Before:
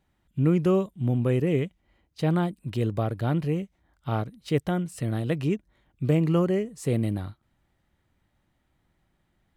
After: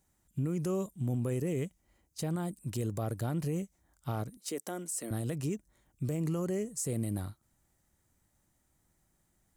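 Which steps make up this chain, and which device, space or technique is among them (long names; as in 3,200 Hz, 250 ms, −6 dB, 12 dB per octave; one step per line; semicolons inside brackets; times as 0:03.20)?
over-bright horn tweeter (high shelf with overshoot 4,900 Hz +13.5 dB, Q 1.5; brickwall limiter −21.5 dBFS, peak gain reduction 10 dB)
0:04.37–0:05.11: high-pass filter 250 Hz 24 dB per octave
level −4 dB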